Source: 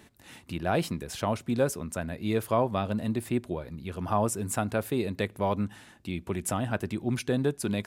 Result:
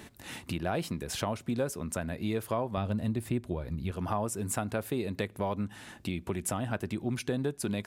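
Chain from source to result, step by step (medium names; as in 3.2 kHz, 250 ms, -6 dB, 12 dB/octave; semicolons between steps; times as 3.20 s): 2.77–3.91 s: bass shelf 120 Hz +11.5 dB; compression 2.5:1, threshold -40 dBFS, peak gain reduction 13.5 dB; trim +6.5 dB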